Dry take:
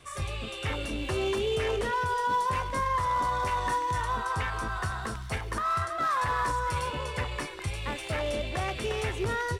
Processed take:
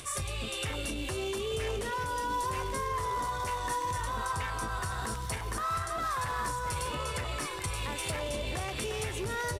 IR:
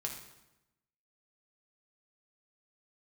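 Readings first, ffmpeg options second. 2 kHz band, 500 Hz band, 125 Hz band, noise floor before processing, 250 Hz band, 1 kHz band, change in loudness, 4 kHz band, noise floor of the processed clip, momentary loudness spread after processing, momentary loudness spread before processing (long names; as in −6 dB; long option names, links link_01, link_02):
−4.0 dB, −4.0 dB, −3.0 dB, −39 dBFS, −3.0 dB, −4.5 dB, −3.5 dB, −0.5 dB, −37 dBFS, 3 LU, 7 LU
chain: -filter_complex "[0:a]tiltshelf=frequency=1200:gain=3.5,alimiter=level_in=2.5dB:limit=-24dB:level=0:latency=1:release=133,volume=-2.5dB,crystalizer=i=4.5:c=0,acompressor=mode=upward:threshold=-40dB:ratio=2.5,asplit=2[link_01][link_02];[link_02]adelay=1341,volume=-7dB,highshelf=frequency=4000:gain=-30.2[link_03];[link_01][link_03]amix=inputs=2:normalize=0,aresample=32000,aresample=44100,volume=-1.5dB"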